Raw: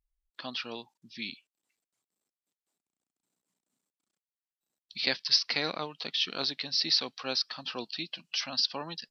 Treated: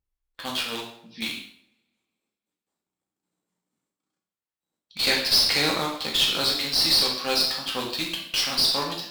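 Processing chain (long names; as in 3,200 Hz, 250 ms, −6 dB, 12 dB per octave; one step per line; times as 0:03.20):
in parallel at −4.5 dB: bit reduction 5 bits
on the sum: coupled-rooms reverb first 0.66 s, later 1.8 s, from −25 dB, DRR −2.5 dB
tube saturation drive 17 dB, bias 0.45
one half of a high-frequency compander decoder only
level +3 dB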